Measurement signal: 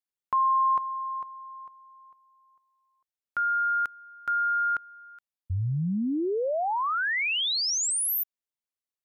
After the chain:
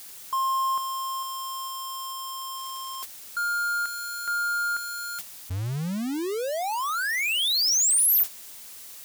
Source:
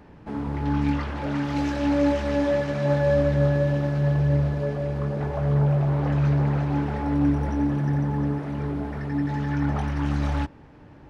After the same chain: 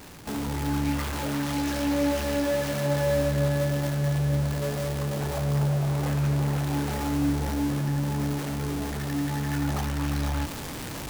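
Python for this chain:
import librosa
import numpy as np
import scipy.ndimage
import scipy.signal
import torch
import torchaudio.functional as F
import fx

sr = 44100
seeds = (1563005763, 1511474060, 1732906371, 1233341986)

y = x + 0.5 * 10.0 ** (-26.0 / 20.0) * np.sign(x)
y = fx.gate_hold(y, sr, open_db=-24.0, close_db=-32.0, hold_ms=12.0, range_db=-10, attack_ms=2.5, release_ms=23.0)
y = fx.high_shelf(y, sr, hz=3700.0, db=9.5)
y = y * librosa.db_to_amplitude(-5.5)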